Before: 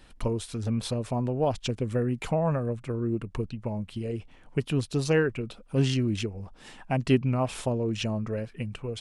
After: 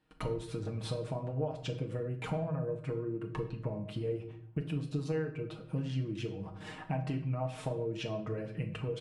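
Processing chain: HPF 65 Hz 12 dB/oct; gate with hold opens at -45 dBFS; high shelf 3500 Hz -11.5 dB; comb 6.4 ms, depth 68%; compressor 10:1, threshold -36 dBFS, peak gain reduction 21 dB; shoebox room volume 130 m³, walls mixed, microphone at 0.51 m; gain +2 dB

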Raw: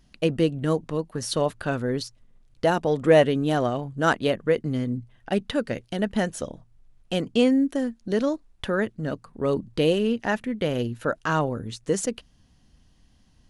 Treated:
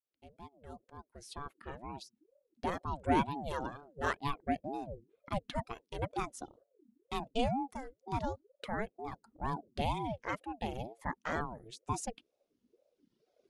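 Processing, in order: opening faded in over 3.54 s; reverb removal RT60 1.9 s; ring modulator with a swept carrier 400 Hz, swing 45%, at 2.1 Hz; gain -8.5 dB

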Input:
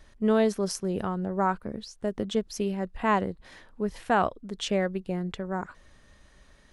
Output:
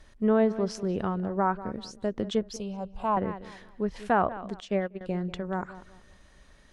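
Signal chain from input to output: on a send: darkening echo 0.192 s, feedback 30%, low-pass 2200 Hz, level -15 dB; on the sum: treble ducked by the level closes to 1800 Hz, closed at -20 dBFS; 2.56–3.17 fixed phaser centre 780 Hz, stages 4; 4.6–5.01 upward expander 2.5:1, over -34 dBFS

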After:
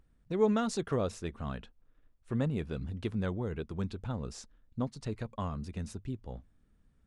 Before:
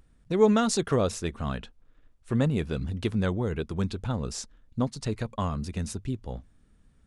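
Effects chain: high shelf 3800 Hz -6.5 dB; gain -6.5 dB

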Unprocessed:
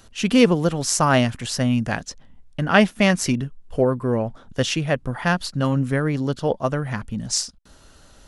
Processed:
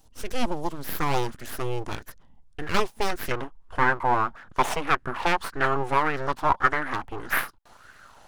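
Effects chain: full-wave rectifier; bell 1400 Hz -12.5 dB 2.4 oct, from 0.98 s -6 dB, from 3.31 s +6.5 dB; LFO bell 1.7 Hz 810–1700 Hz +13 dB; gain -6 dB

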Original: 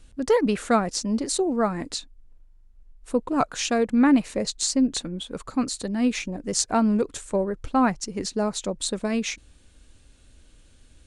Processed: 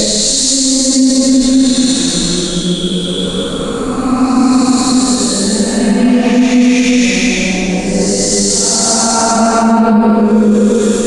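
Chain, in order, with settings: Paulstretch 4.2×, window 0.50 s, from 4.5; maximiser +19 dB; gain -1 dB

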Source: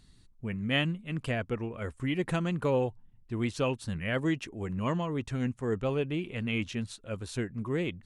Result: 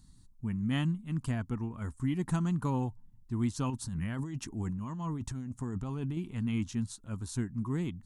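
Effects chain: EQ curve 260 Hz 0 dB, 530 Hz -18 dB, 920 Hz -1 dB, 2500 Hz -15 dB, 6600 Hz +1 dB; 3.7–6.17 negative-ratio compressor -37 dBFS, ratio -1; gain +1.5 dB

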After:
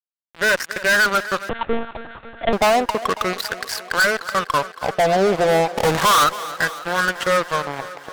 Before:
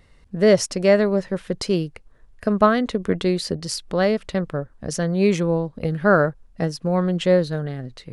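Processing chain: 3.33–4 tilt +3 dB/oct; in parallel at -2.5 dB: limiter -13.5 dBFS, peak gain reduction 10.5 dB; on the sum: wah 0.33 Hz 690–1600 Hz, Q 18; 5.7–6.24 sample leveller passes 5; fuzz box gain 45 dB, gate -53 dBFS; on a send: thinning echo 0.276 s, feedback 71%, high-pass 210 Hz, level -15.5 dB; 1.49–2.53 on the sum: monotone LPC vocoder at 8 kHz 230 Hz

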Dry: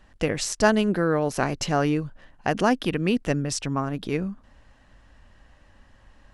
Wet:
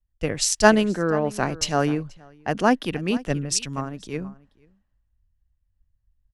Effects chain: echo 0.483 s -15 dB; three-band expander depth 100%; gain -1 dB

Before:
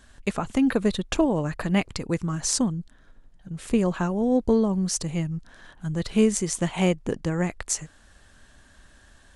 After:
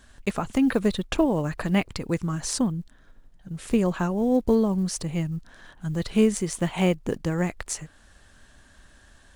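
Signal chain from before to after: block floating point 7-bit; dynamic EQ 6600 Hz, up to -6 dB, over -42 dBFS, Q 1.3

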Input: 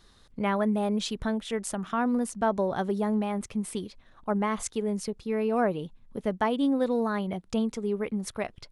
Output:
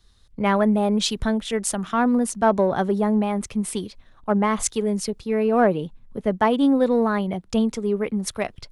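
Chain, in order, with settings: in parallel at -9 dB: soft clip -25 dBFS, distortion -12 dB; on the sum: three-band expander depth 40%; gain +5 dB

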